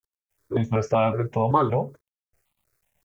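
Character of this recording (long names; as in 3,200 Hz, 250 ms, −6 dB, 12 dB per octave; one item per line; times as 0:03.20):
a quantiser's noise floor 12 bits, dither none
notches that jump at a steady rate 5.3 Hz 670–1,600 Hz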